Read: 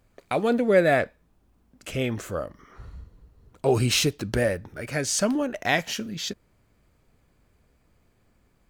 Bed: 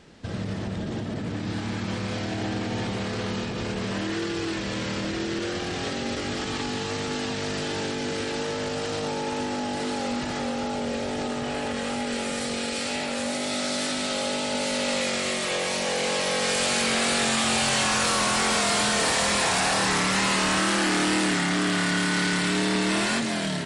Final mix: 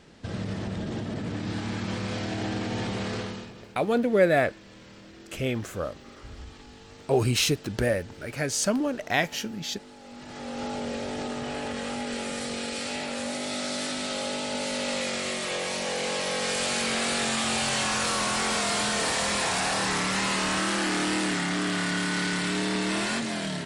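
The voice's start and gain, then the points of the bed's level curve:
3.45 s, -1.5 dB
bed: 3.16 s -1.5 dB
3.70 s -19.5 dB
10.00 s -19.5 dB
10.64 s -3.5 dB

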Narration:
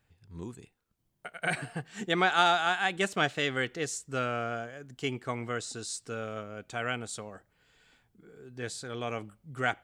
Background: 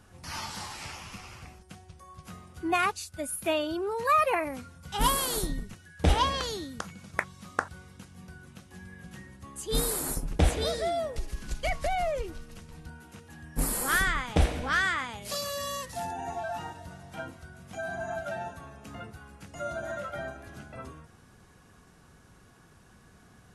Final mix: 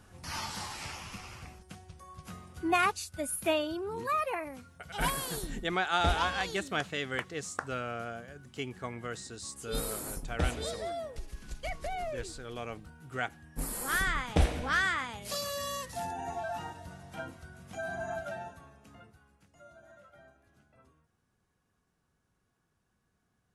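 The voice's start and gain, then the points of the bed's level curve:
3.55 s, -5.0 dB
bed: 3.50 s -0.5 dB
4.00 s -7.5 dB
13.69 s -7.5 dB
14.18 s -2 dB
18.13 s -2 dB
19.71 s -20.5 dB

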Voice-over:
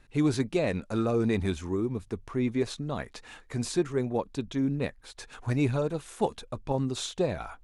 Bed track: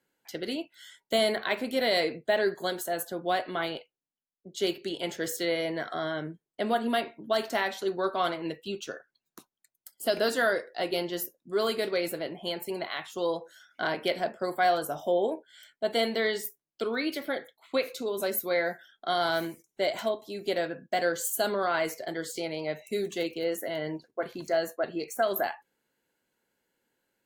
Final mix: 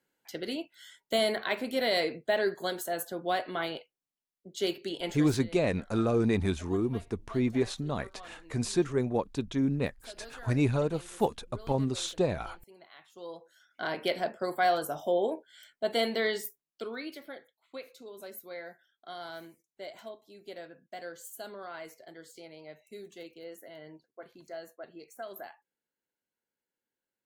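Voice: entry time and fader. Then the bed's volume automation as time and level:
5.00 s, 0.0 dB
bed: 5.11 s -2 dB
5.48 s -22 dB
12.77 s -22 dB
14.03 s -1.5 dB
16.33 s -1.5 dB
17.53 s -15 dB

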